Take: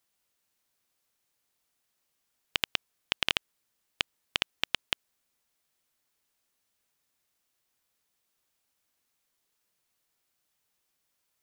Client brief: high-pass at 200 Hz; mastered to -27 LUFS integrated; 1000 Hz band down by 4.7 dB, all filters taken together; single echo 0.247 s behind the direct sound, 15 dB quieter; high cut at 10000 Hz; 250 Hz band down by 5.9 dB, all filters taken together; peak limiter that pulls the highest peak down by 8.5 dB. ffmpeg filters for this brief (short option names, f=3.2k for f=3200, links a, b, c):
-af "highpass=200,lowpass=10k,equalizer=f=250:t=o:g=-5.5,equalizer=f=1k:t=o:g=-6,alimiter=limit=-15dB:level=0:latency=1,aecho=1:1:247:0.178,volume=14.5dB"